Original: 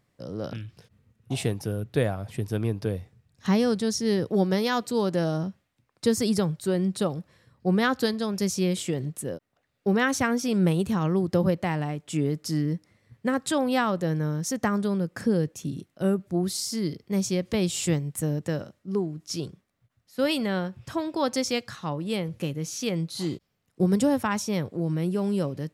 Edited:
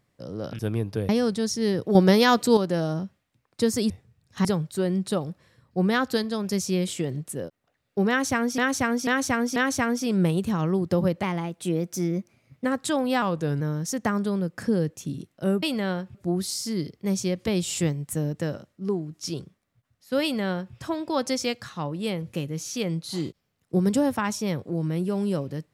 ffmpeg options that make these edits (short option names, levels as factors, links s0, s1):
-filter_complex "[0:a]asplit=16[s0][s1][s2][s3][s4][s5][s6][s7][s8][s9][s10][s11][s12][s13][s14][s15];[s0]atrim=end=0.592[s16];[s1]atrim=start=2.478:end=2.982[s17];[s2]atrim=start=3.528:end=4.392[s18];[s3]atrim=start=4.388:end=5.012,asetpts=PTS-STARTPTS,volume=2.24[s19];[s4]atrim=start=5.008:end=6.342[s20];[s5]atrim=start=2.978:end=3.532[s21];[s6]atrim=start=6.338:end=10.472[s22];[s7]atrim=start=9.978:end=10.472[s23];[s8]atrim=start=9.978:end=10.472[s24];[s9]atrim=start=9.978:end=11.654[s25];[s10]atrim=start=11.65:end=13.27,asetpts=PTS-STARTPTS,asetrate=50274,aresample=44100,atrim=end_sample=62668,asetpts=PTS-STARTPTS[s26];[s11]atrim=start=13.266:end=13.844[s27];[s12]atrim=start=13.84:end=14.19,asetpts=PTS-STARTPTS,asetrate=40131,aresample=44100[s28];[s13]atrim=start=14.186:end=16.212[s29];[s14]atrim=start=20.288:end=20.812[s30];[s15]atrim=start=16.208[s31];[s16][s17]acrossfade=d=0.004:c1=hsin:c2=hsin[s32];[s32][s18]acrossfade=d=0.004:c1=hsin:c2=hsin[s33];[s33][s19]acrossfade=d=0.004:c1=hsin:c2=hsin[s34];[s34][s20]acrossfade=d=0.004:c1=hsin:c2=hsin[s35];[s35][s21]acrossfade=d=0.004:c1=hsin:c2=hsin[s36];[s36][s22]acrossfade=d=0.004:c1=hsin:c2=hsin[s37];[s37][s23]acrossfade=d=0.004:c1=hsin:c2=hsin[s38];[s38][s24]acrossfade=d=0.004:c1=hsin:c2=hsin[s39];[s39][s25]acrossfade=d=0.004:c1=hsin:c2=hsin[s40];[s40][s26]acrossfade=d=0.004:c1=hsin:c2=hsin[s41];[s41][s27]acrossfade=d=0.004:c1=hsin:c2=hsin[s42];[s42][s28]acrossfade=d=0.004:c1=hsin:c2=hsin[s43];[s43][s29]acrossfade=d=0.004:c1=hsin:c2=hsin[s44];[s44][s30]acrossfade=d=0.004:c1=hsin:c2=hsin[s45];[s45][s31]acrossfade=d=0.004:c1=hsin:c2=hsin"